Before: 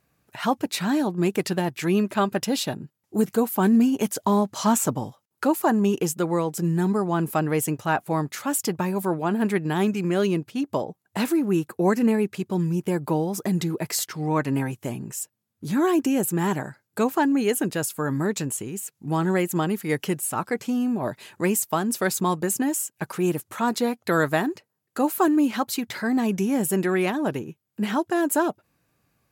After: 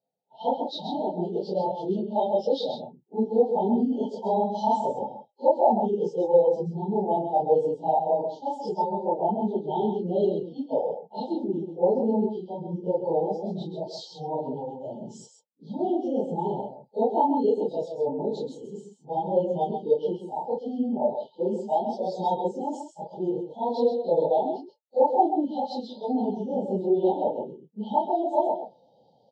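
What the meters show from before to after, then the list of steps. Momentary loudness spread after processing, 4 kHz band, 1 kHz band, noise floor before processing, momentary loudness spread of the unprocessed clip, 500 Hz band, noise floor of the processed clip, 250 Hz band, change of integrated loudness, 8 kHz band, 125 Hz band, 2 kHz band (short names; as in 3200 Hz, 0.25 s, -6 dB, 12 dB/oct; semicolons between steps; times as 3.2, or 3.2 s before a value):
12 LU, -9.0 dB, +1.5 dB, -77 dBFS, 8 LU, +2.0 dB, -61 dBFS, -7.0 dB, -2.5 dB, under -25 dB, -10.0 dB, under -40 dB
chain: phase scrambler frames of 0.1 s; Chebyshev band-stop 880–3100 Hz, order 5; in parallel at +2 dB: limiter -16.5 dBFS, peak gain reduction 7.5 dB; on the sum: speaker cabinet 280–4800 Hz, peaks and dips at 310 Hz -8 dB, 510 Hz +5 dB, 910 Hz +7 dB, 1900 Hz +9 dB; reverse; upward compressor, threshold -22 dBFS; reverse; echo 0.132 s -5 dB; spectral expander 1.5:1; gain -4.5 dB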